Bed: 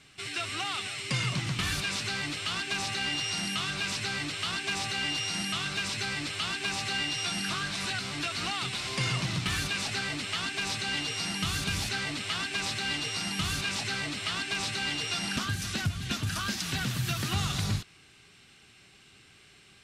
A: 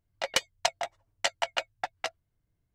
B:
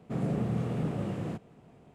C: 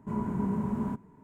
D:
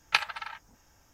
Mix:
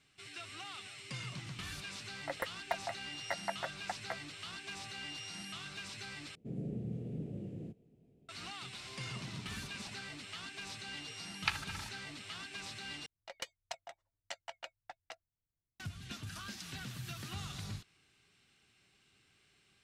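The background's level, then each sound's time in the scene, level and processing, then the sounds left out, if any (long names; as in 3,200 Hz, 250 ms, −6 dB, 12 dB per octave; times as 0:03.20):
bed −13.5 dB
0:02.06: mix in A −7 dB + linear-phase brick-wall band-stop 2,200–10,000 Hz
0:06.35: overwrite with B −9.5 dB + drawn EQ curve 420 Hz 0 dB, 660 Hz −10 dB, 1,100 Hz −26 dB, 2,500 Hz −9 dB
0:08.99: mix in C −17.5 dB + amplitude tremolo 17 Hz, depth 98%
0:11.33: mix in D −10 dB + meter weighting curve A
0:13.06: overwrite with A −17 dB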